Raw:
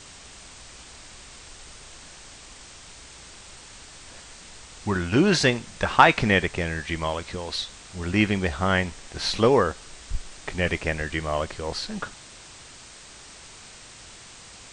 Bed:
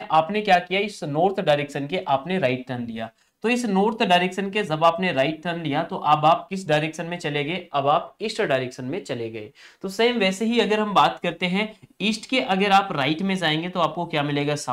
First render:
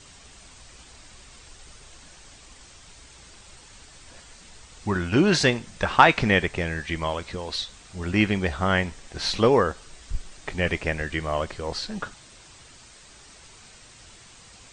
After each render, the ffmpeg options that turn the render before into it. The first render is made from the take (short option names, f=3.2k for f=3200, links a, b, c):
-af "afftdn=nr=6:nf=-46"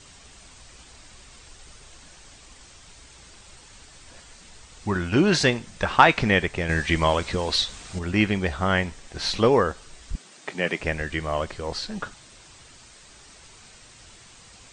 -filter_complex "[0:a]asettb=1/sr,asplit=3[a][b][c];[a]atrim=end=6.694[d];[b]atrim=start=6.69:end=7.99,asetpts=PTS-STARTPTS,afade=t=in:d=0.004:c=qsin,afade=t=out:st=1.296:d=0.004:c=qsin,acontrast=75[e];[c]atrim=start=7.986[f];[d][e]acrossfade=d=0.004:c1=hsin:c2=qsin[g];[g][f]acrossfade=d=0.004:c1=qsin:c2=hsin,asettb=1/sr,asplit=3[h][i][j];[h]atrim=end=10.154[k];[i]atrim=start=10.15:end=10.8,asetpts=PTS-STARTPTS,afade=t=in:d=0.004:c=qsin,afade=t=out:st=0.646:d=0.004:c=qsin,highpass=f=170:w=0.5412,highpass=f=170:w=1.3066[l];[j]atrim=start=10.796[m];[k][l]acrossfade=d=0.004:c1=hsin:c2=qsin[n];[n][m]acrossfade=d=0.004:c1=qsin:c2=hsin"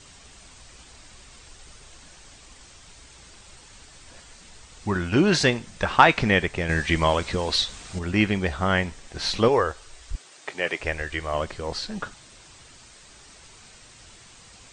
-filter_complex "[0:a]asettb=1/sr,asplit=3[a][b][c];[a]atrim=end=9.484[d];[b]atrim=start=9.48:end=11.34,asetpts=PTS-STARTPTS,afade=t=in:d=0.004:c=qsin,afade=t=out:st=1.856:d=0.004:c=qsin,equalizer=f=200:t=o:w=0.77:g=-14.5[e];[c]atrim=start=11.336[f];[d][e]acrossfade=d=0.004:c1=hsin:c2=qsin[g];[g][f]acrossfade=d=0.004:c1=qsin:c2=hsin"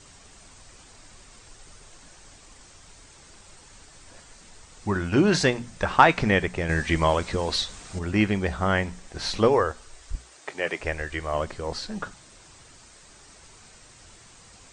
-af "equalizer=f=3.2k:t=o:w=1.4:g=-4.5,bandreject=f=60:t=h:w=6,bandreject=f=120:t=h:w=6,bandreject=f=180:t=h:w=6,bandreject=f=240:t=h:w=6"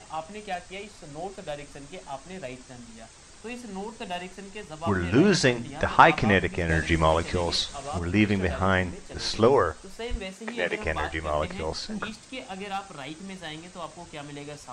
-filter_complex "[1:a]volume=-16dB[a];[0:a][a]amix=inputs=2:normalize=0"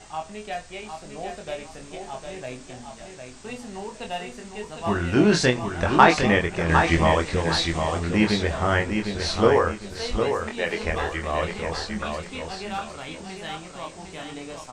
-filter_complex "[0:a]asplit=2[a][b];[b]adelay=24,volume=-4.5dB[c];[a][c]amix=inputs=2:normalize=0,aecho=1:1:756|1512|2268|3024:0.501|0.15|0.0451|0.0135"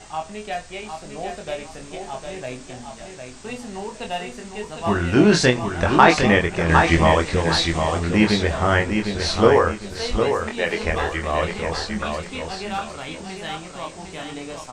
-af "volume=3.5dB,alimiter=limit=-1dB:level=0:latency=1"